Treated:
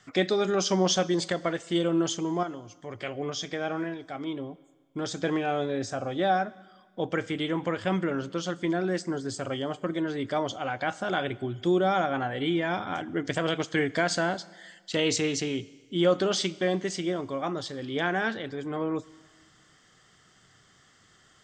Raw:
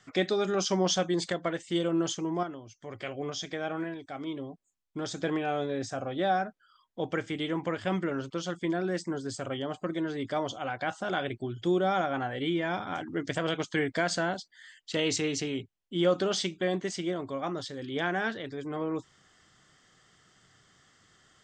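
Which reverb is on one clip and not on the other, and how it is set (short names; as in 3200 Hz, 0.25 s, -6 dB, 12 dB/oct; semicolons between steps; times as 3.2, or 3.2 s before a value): Schroeder reverb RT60 1.5 s, combs from 32 ms, DRR 19.5 dB; gain +2.5 dB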